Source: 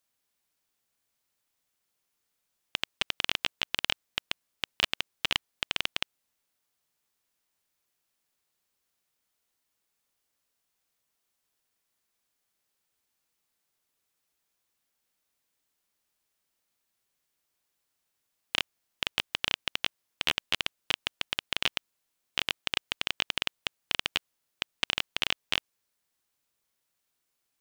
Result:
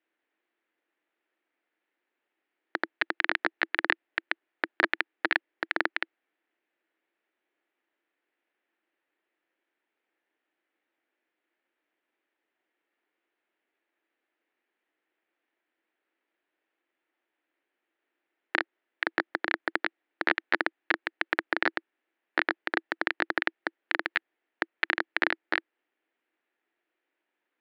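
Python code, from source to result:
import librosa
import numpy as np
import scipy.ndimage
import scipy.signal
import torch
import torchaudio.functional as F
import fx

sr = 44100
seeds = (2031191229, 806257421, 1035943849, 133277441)

y = x * np.sin(2.0 * np.pi * 1300.0 * np.arange(len(x)) / sr)
y = fx.cabinet(y, sr, low_hz=270.0, low_slope=24, high_hz=2600.0, hz=(330.0, 1100.0, 1800.0), db=(10, -5, 4))
y = y * librosa.db_to_amplitude(7.5)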